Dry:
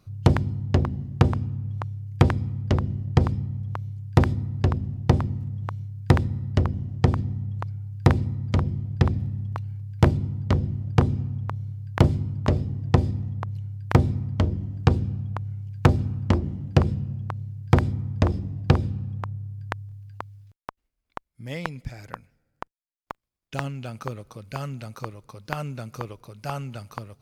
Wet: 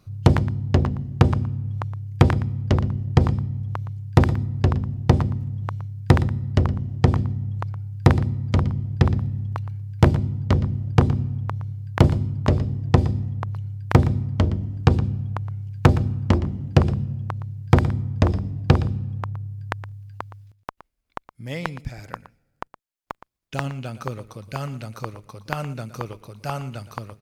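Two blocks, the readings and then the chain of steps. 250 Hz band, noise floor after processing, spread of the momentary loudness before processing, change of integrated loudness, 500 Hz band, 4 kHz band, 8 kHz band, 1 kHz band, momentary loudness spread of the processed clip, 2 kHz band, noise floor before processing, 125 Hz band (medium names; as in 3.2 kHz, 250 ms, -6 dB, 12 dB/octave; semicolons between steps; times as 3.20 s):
+2.5 dB, -71 dBFS, 17 LU, +3.0 dB, +2.5 dB, +2.5 dB, no reading, +2.5 dB, 17 LU, +2.5 dB, -77 dBFS, +3.0 dB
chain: delay 117 ms -15 dB; trim +2.5 dB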